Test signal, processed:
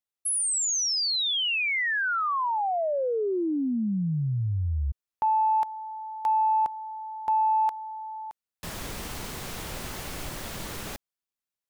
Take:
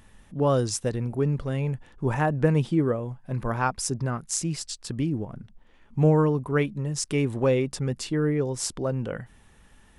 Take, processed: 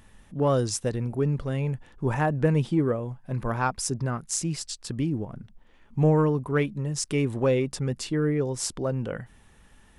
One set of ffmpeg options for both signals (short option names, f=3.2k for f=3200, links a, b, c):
-af "acontrast=74,volume=-7dB"